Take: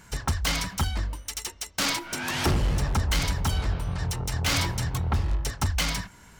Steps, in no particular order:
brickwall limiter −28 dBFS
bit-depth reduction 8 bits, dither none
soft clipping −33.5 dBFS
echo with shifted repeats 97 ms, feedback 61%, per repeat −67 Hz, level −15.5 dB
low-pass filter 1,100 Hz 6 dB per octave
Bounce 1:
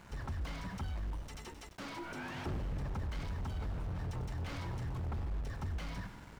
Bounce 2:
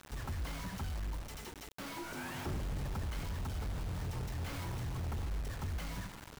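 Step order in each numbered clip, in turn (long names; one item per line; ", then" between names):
brickwall limiter, then echo with shifted repeats, then soft clipping, then bit-depth reduction, then low-pass filter
brickwall limiter, then echo with shifted repeats, then soft clipping, then low-pass filter, then bit-depth reduction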